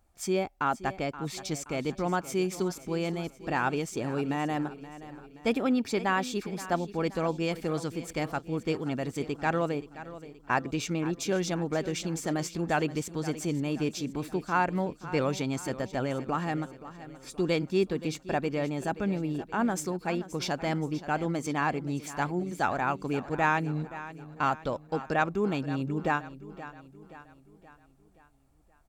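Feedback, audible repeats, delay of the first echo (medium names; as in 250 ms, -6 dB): 49%, 4, 525 ms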